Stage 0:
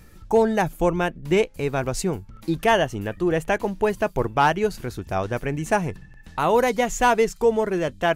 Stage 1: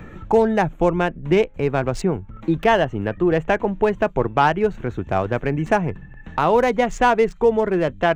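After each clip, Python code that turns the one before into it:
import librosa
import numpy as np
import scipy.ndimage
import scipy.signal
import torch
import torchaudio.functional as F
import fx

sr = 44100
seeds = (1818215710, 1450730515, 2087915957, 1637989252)

y = fx.wiener(x, sr, points=9)
y = fx.peak_eq(y, sr, hz=12000.0, db=-13.5, octaves=1.2)
y = fx.band_squash(y, sr, depth_pct=40)
y = y * librosa.db_to_amplitude(3.0)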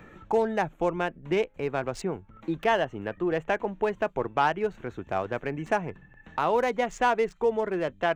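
y = fx.low_shelf(x, sr, hz=200.0, db=-10.5)
y = y * librosa.db_to_amplitude(-6.5)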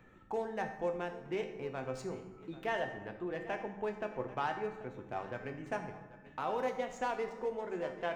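y = fx.comb_fb(x, sr, f0_hz=260.0, decay_s=0.46, harmonics='all', damping=0.0, mix_pct=80)
y = y + 10.0 ** (-17.5 / 20.0) * np.pad(y, (int(788 * sr / 1000.0), 0))[:len(y)]
y = fx.rev_fdn(y, sr, rt60_s=1.3, lf_ratio=1.45, hf_ratio=0.6, size_ms=47.0, drr_db=6.0)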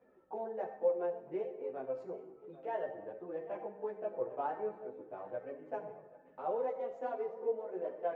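y = fx.bandpass_q(x, sr, hz=530.0, q=2.3)
y = fx.chorus_voices(y, sr, voices=4, hz=0.29, base_ms=15, depth_ms=4.0, mix_pct=65)
y = y * librosa.db_to_amplitude(6.0)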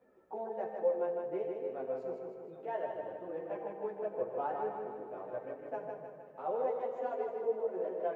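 y = fx.echo_feedback(x, sr, ms=156, feedback_pct=54, wet_db=-4.5)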